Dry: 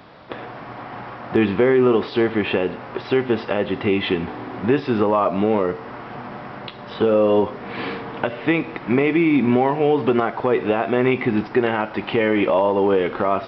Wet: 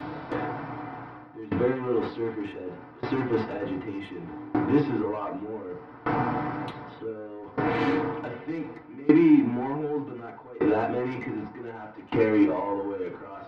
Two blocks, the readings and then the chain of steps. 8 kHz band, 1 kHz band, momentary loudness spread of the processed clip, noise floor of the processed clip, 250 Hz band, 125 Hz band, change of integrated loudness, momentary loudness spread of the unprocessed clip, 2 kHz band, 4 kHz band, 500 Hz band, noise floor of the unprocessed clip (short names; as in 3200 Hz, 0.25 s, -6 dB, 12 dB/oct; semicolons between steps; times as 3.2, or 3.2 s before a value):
n/a, -8.0 dB, 17 LU, -46 dBFS, -5.0 dB, -6.5 dB, -7.5 dB, 17 LU, -10.0 dB, -14.5 dB, -10.0 dB, -36 dBFS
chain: reverse; compressor 12:1, threshold -24 dBFS, peak gain reduction 12.5 dB; reverse; soft clip -24.5 dBFS, distortion -13 dB; FDN reverb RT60 0.32 s, low-frequency decay 1.25×, high-frequency decay 0.3×, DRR -7.5 dB; dB-ramp tremolo decaying 0.66 Hz, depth 23 dB